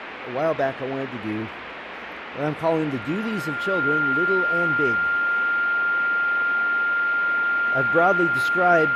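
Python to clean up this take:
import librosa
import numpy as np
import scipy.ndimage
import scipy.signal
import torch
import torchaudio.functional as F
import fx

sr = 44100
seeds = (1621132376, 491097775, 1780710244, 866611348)

y = fx.notch(x, sr, hz=1400.0, q=30.0)
y = fx.noise_reduce(y, sr, print_start_s=1.51, print_end_s=2.01, reduce_db=30.0)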